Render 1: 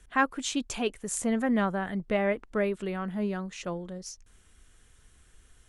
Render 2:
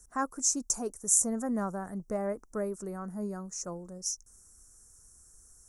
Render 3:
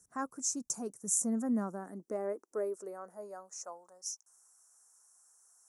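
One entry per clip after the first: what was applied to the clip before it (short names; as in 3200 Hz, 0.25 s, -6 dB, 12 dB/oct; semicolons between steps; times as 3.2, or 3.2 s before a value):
EQ curve 1300 Hz 0 dB, 3300 Hz -29 dB, 5700 Hz +15 dB; gain -5.5 dB
high-pass sweep 130 Hz -> 830 Hz, 0.53–3.9; gain -6.5 dB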